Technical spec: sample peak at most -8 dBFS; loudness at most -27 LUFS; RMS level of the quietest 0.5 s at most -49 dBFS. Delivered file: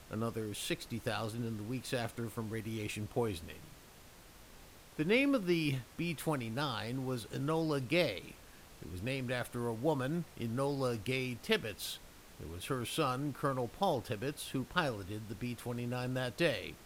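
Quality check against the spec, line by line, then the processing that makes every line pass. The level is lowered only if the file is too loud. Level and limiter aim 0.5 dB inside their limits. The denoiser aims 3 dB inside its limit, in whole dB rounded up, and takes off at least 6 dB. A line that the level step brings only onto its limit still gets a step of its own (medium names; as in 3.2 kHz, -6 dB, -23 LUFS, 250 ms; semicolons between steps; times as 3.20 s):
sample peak -16.0 dBFS: pass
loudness -36.5 LUFS: pass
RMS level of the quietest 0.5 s -57 dBFS: pass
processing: none needed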